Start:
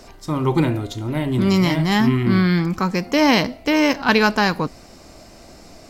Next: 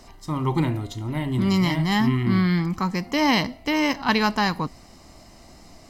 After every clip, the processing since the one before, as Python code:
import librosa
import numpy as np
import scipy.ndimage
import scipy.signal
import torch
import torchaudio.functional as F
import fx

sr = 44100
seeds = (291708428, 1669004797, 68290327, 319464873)

y = x + 0.39 * np.pad(x, (int(1.0 * sr / 1000.0), 0))[:len(x)]
y = F.gain(torch.from_numpy(y), -5.0).numpy()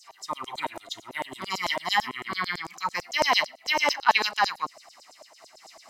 y = fx.low_shelf(x, sr, hz=230.0, db=11.0)
y = fx.filter_lfo_highpass(y, sr, shape='saw_down', hz=9.0, low_hz=550.0, high_hz=7800.0, q=3.6)
y = fx.am_noise(y, sr, seeds[0], hz=5.7, depth_pct=50)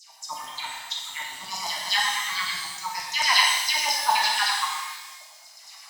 y = fx.phaser_stages(x, sr, stages=2, low_hz=470.0, high_hz=1500.0, hz=0.81, feedback_pct=45)
y = fx.low_shelf_res(y, sr, hz=600.0, db=-13.5, q=3.0)
y = fx.rev_shimmer(y, sr, seeds[1], rt60_s=1.2, semitones=12, shimmer_db=-8, drr_db=-2.5)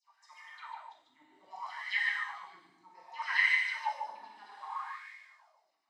y = fx.wah_lfo(x, sr, hz=0.64, low_hz=280.0, high_hz=2100.0, q=8.4)
y = y + 10.0 ** (-5.5 / 20.0) * np.pad(y, (int(146 * sr / 1000.0), 0))[:len(y)]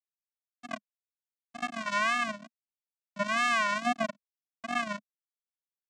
y = fx.quant_companded(x, sr, bits=2)
y = fx.vocoder(y, sr, bands=4, carrier='square', carrier_hz=223.0)
y = fx.wow_flutter(y, sr, seeds[2], rate_hz=2.1, depth_cents=150.0)